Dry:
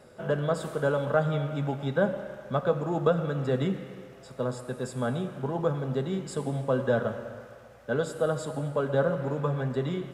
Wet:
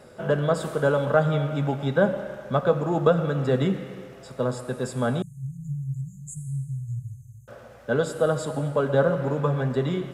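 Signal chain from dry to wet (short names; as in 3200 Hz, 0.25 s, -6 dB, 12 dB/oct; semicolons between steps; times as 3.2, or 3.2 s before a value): 5.22–7.48 brick-wall FIR band-stop 160–6200 Hz; gain +4.5 dB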